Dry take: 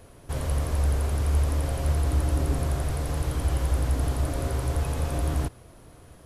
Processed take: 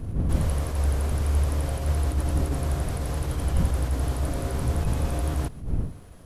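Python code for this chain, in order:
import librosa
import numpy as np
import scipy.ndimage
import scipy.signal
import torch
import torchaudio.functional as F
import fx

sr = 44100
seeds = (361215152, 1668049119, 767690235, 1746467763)

y = fx.dmg_wind(x, sr, seeds[0], corner_hz=120.0, level_db=-30.0)
y = fx.dmg_crackle(y, sr, seeds[1], per_s=110.0, level_db=-52.0)
y = fx.attack_slew(y, sr, db_per_s=140.0)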